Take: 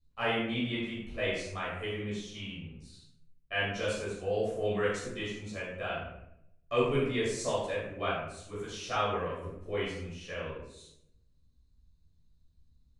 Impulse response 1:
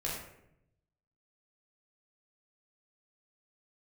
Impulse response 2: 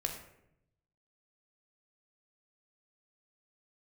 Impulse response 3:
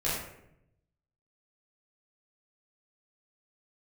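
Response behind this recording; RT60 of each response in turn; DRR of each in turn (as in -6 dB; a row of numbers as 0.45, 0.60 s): 3; 0.75, 0.75, 0.75 s; -5.5, 3.0, -9.5 dB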